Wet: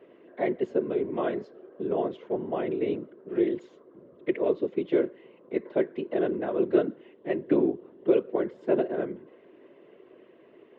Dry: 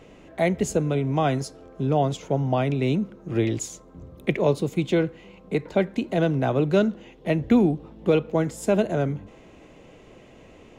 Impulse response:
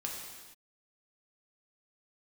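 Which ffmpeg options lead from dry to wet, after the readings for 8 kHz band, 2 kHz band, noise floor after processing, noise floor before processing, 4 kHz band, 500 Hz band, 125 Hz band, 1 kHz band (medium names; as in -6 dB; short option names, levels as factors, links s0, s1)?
under -35 dB, -8.0 dB, -56 dBFS, -50 dBFS, under -10 dB, -2.0 dB, -19.0 dB, -8.0 dB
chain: -af "afftfilt=real='hypot(re,im)*cos(2*PI*random(0))':imag='hypot(re,im)*sin(2*PI*random(1))':win_size=512:overlap=0.75,highpass=340,equalizer=f=370:t=q:w=4:g=9,equalizer=f=800:t=q:w=4:g=-10,equalizer=f=1300:t=q:w=4:g=-5,equalizer=f=2400:t=q:w=4:g=-9,lowpass=f=2700:w=0.5412,lowpass=f=2700:w=1.3066,volume=1.33"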